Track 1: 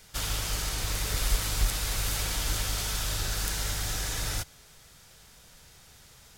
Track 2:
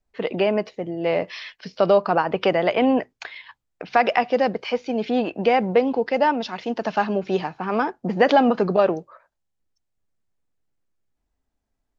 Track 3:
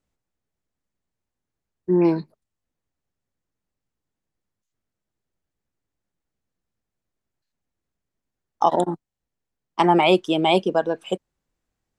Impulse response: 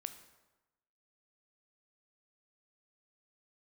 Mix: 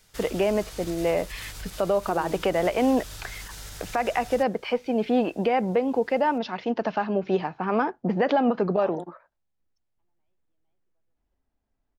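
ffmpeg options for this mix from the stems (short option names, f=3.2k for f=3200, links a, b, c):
-filter_complex "[0:a]alimiter=limit=-23.5dB:level=0:latency=1:release=63,volume=-6.5dB[a];[1:a]highshelf=f=4.6k:g=-12,volume=0dB,asplit=2[b][c];[2:a]acompressor=threshold=-18dB:ratio=6,lowpass=f=3.3k:p=1,adelay=200,volume=-11dB[d];[c]apad=whole_len=537317[e];[d][e]sidechaingate=range=-54dB:threshold=-39dB:ratio=16:detection=peak[f];[a][b][f]amix=inputs=3:normalize=0,alimiter=limit=-13dB:level=0:latency=1:release=229"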